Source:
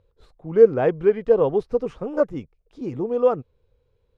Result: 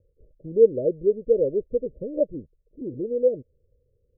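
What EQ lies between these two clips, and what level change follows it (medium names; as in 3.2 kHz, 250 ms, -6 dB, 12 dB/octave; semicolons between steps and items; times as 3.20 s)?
Chebyshev low-pass 610 Hz, order 8; distance through air 400 m; dynamic bell 140 Hz, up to -8 dB, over -38 dBFS, Q 0.85; 0.0 dB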